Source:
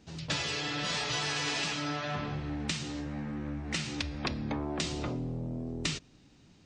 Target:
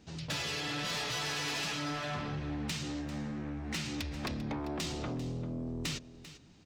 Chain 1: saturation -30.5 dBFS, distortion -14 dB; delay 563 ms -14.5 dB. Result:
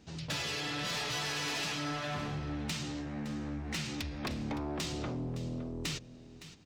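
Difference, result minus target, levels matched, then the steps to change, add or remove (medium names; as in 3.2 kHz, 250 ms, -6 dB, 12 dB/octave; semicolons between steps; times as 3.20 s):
echo 169 ms late
change: delay 394 ms -14.5 dB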